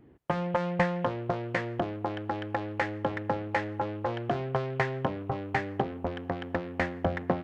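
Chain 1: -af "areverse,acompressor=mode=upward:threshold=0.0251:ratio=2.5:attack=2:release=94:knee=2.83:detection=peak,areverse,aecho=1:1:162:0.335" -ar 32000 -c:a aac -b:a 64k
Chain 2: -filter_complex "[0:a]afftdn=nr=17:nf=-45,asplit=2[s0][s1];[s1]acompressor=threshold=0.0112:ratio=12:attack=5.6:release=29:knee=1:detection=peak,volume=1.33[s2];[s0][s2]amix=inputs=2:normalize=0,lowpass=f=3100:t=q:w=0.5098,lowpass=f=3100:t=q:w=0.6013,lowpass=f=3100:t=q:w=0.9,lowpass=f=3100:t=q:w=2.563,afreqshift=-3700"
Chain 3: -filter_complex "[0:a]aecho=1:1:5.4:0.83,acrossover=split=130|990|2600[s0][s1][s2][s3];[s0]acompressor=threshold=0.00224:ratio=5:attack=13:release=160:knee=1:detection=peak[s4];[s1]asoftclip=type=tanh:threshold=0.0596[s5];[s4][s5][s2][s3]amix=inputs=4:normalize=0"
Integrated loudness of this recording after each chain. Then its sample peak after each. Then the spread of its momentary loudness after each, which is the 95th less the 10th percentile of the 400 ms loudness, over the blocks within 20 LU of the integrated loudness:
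-31.0 LUFS, -25.0 LUFS, -31.5 LUFS; -10.5 dBFS, -9.5 dBFS, -15.0 dBFS; 5 LU, 4 LU, 6 LU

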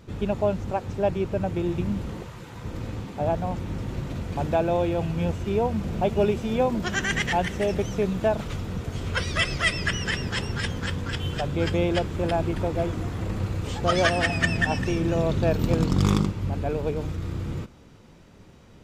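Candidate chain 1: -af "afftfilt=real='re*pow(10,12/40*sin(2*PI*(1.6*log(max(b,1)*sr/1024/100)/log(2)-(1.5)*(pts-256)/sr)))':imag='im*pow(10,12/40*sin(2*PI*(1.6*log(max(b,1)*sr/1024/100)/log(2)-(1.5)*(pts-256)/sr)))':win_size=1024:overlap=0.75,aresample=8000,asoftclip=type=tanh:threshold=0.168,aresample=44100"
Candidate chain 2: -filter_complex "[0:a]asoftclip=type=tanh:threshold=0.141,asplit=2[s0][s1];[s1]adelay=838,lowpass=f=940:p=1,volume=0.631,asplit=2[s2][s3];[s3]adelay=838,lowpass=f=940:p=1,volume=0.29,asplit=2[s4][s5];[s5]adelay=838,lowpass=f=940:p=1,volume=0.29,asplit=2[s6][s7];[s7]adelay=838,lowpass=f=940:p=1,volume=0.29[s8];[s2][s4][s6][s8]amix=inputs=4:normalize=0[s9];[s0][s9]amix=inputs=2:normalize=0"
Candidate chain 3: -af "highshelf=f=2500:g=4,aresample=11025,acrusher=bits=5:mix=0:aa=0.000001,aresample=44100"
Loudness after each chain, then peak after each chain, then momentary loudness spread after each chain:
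-26.5 LUFS, -26.5 LUFS, -25.5 LUFS; -13.0 dBFS, -13.5 dBFS, -7.0 dBFS; 8 LU, 7 LU, 9 LU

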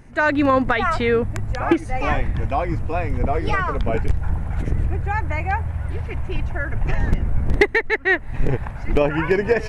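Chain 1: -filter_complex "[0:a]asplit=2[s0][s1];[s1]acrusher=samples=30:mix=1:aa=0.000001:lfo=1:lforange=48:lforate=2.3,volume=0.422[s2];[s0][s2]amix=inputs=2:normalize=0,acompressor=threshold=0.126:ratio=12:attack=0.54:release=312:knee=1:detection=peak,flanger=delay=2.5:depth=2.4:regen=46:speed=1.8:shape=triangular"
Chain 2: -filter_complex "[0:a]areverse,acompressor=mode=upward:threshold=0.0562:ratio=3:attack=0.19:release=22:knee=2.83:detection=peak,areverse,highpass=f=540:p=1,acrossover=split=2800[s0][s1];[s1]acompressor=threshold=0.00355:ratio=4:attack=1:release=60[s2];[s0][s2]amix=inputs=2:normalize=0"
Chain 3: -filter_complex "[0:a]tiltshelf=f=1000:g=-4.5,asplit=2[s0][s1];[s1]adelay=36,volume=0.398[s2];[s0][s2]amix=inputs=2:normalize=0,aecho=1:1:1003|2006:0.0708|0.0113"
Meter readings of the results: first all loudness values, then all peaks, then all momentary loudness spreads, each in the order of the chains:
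-32.5 LUFS, -25.5 LUFS, -22.0 LUFS; -15.5 dBFS, -4.5 dBFS, -1.5 dBFS; 4 LU, 16 LU, 12 LU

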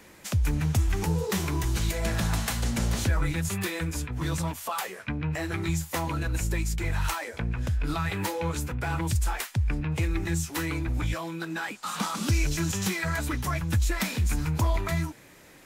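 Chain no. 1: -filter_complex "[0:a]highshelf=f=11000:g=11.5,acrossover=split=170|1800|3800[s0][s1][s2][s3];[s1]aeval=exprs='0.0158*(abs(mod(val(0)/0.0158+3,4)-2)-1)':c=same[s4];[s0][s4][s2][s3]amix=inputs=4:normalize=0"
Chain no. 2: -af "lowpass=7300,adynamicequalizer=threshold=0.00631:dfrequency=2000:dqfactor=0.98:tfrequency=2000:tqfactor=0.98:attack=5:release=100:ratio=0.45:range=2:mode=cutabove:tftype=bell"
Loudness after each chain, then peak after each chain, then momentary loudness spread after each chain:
-29.5 LUFS, -29.5 LUFS; -13.5 dBFS, -15.0 dBFS; 6 LU, 6 LU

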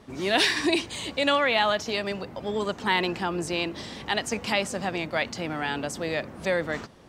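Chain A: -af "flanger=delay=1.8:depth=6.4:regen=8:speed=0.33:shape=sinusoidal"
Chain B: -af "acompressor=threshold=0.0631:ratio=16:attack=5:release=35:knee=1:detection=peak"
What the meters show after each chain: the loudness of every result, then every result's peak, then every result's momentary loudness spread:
-30.0 LUFS, -29.0 LUFS; -10.0 dBFS, -11.5 dBFS; 9 LU, 6 LU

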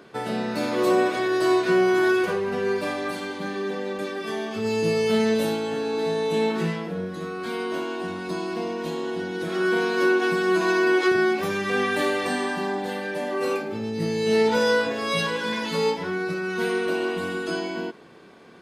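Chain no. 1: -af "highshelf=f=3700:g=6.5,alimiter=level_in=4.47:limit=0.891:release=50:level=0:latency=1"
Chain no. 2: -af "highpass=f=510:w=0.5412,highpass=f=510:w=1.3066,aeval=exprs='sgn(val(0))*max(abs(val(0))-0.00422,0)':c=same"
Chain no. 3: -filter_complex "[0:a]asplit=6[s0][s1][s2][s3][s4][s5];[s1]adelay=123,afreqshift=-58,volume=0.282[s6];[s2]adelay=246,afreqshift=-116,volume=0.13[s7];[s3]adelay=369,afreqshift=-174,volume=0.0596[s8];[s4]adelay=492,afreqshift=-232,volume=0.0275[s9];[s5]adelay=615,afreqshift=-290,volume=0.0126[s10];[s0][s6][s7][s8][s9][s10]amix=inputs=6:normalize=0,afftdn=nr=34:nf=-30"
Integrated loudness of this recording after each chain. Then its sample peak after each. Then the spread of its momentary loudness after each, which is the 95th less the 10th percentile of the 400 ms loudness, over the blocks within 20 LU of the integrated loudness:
-11.5 LUFS, -29.0 LUFS, -24.5 LUFS; -1.0 dBFS, -12.5 dBFS, -9.0 dBFS; 8 LU, 11 LU, 11 LU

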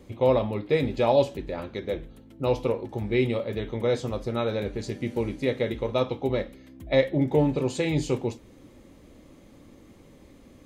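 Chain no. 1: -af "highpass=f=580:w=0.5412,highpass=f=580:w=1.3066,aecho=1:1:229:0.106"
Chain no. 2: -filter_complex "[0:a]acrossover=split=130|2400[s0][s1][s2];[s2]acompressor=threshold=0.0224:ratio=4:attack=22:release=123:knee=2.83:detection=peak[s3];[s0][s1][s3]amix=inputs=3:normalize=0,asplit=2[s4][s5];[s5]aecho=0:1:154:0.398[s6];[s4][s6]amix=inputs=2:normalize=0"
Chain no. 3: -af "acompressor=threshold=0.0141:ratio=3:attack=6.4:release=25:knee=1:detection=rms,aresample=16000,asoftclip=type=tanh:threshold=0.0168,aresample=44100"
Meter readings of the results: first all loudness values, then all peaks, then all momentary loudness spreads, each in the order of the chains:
-32.5 LUFS, -26.0 LUFS, -41.0 LUFS; -11.5 dBFS, -8.0 dBFS, -31.5 dBFS; 12 LU, 11 LU, 13 LU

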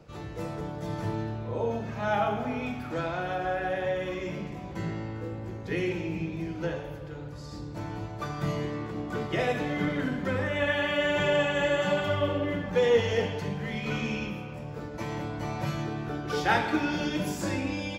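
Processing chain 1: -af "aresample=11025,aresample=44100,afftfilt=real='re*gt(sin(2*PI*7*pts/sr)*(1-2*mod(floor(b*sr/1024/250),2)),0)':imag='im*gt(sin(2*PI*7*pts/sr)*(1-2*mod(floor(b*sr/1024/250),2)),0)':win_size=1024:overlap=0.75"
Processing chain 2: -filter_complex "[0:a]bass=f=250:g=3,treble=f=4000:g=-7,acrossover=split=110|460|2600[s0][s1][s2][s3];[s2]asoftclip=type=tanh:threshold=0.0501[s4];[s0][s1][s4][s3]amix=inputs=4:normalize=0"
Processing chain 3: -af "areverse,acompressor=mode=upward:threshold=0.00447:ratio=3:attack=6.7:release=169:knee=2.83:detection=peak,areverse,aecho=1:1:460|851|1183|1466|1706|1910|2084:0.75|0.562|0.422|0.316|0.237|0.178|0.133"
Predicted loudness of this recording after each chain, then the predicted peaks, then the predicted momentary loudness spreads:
-34.0 LUFS, -30.5 LUFS, -27.0 LUFS; -13.5 dBFS, -14.5 dBFS, -10.0 dBFS; 12 LU, 9 LU, 10 LU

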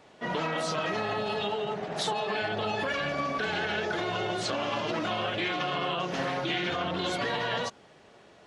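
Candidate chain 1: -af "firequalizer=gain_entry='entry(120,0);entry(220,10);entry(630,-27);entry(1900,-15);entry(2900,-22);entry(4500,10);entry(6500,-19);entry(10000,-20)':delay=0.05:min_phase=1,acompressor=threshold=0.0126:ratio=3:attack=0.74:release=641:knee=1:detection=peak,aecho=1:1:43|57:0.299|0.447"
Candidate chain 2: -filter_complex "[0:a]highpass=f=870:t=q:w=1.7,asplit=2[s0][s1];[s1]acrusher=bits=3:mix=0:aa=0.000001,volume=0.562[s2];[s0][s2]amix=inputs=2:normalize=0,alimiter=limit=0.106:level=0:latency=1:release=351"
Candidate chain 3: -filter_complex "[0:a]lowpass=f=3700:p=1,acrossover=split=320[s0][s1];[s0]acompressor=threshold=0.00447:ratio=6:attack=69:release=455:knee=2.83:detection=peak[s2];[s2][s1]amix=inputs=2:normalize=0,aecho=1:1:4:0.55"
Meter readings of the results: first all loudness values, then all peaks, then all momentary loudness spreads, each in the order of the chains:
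-40.5 LUFS, -32.5 LUFS, -30.5 LUFS; -28.5 dBFS, -19.5 dBFS, -18.0 dBFS; 3 LU, 3 LU, 3 LU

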